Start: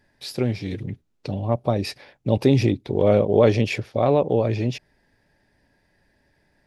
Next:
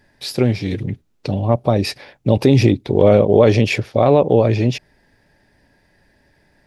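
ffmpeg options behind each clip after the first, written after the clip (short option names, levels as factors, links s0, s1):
-af "alimiter=level_in=2.51:limit=0.891:release=50:level=0:latency=1,volume=0.891"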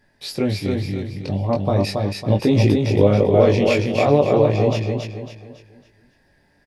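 -filter_complex "[0:a]asplit=2[s0][s1];[s1]aecho=0:1:276|552|828|1104|1380:0.668|0.254|0.0965|0.0367|0.0139[s2];[s0][s2]amix=inputs=2:normalize=0,flanger=delay=19:depth=2.3:speed=0.4,volume=0.891"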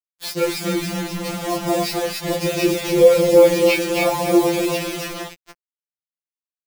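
-af "acrusher=bits=4:mix=0:aa=0.000001,afftfilt=real='re*2.83*eq(mod(b,8),0)':imag='im*2.83*eq(mod(b,8),0)':win_size=2048:overlap=0.75,volume=1.78"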